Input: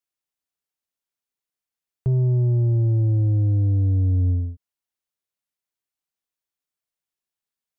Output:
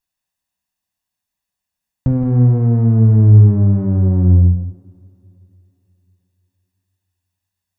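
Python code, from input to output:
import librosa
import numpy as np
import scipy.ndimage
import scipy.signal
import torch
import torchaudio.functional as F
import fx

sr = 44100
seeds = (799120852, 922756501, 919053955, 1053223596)

p1 = fx.lower_of_two(x, sr, delay_ms=1.1)
p2 = fx.low_shelf(p1, sr, hz=220.0, db=5.0)
p3 = 10.0 ** (-25.0 / 20.0) * np.tanh(p2 / 10.0 ** (-25.0 / 20.0))
p4 = p2 + F.gain(torch.from_numpy(p3), -6.0).numpy()
p5 = p4 + 10.0 ** (-10.5 / 20.0) * np.pad(p4, (int(169 * sr / 1000.0), 0))[:len(p4)]
p6 = fx.rev_double_slope(p5, sr, seeds[0], early_s=0.74, late_s=3.4, knee_db=-21, drr_db=6.0)
y = F.gain(torch.from_numpy(p6), 4.0).numpy()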